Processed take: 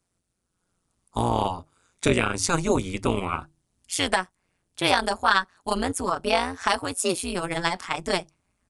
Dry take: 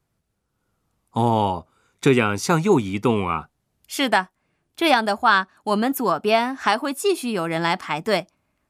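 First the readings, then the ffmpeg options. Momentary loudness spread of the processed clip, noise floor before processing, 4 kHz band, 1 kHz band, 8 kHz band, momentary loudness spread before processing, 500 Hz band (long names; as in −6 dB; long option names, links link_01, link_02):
8 LU, −74 dBFS, −1.0 dB, −4.5 dB, +4.0 dB, 7 LU, −5.0 dB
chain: -af "aemphasis=mode=production:type=50fm,bandreject=frequency=50:width_type=h:width=6,bandreject=frequency=100:width_type=h:width=6,bandreject=frequency=150:width_type=h:width=6,asubboost=boost=2.5:cutoff=120,tremolo=f=180:d=0.947,aresample=22050,aresample=44100"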